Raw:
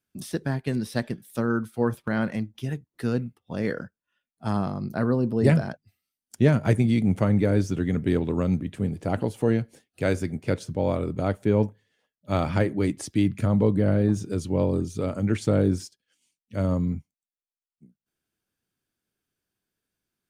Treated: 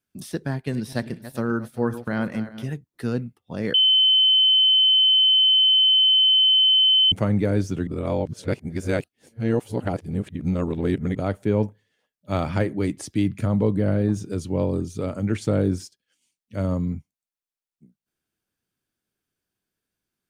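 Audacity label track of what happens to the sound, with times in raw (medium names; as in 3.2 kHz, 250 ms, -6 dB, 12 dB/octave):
0.540000	2.690000	backward echo that repeats 195 ms, feedback 48%, level -13 dB
3.740000	7.120000	bleep 3.06 kHz -13.5 dBFS
7.870000	11.150000	reverse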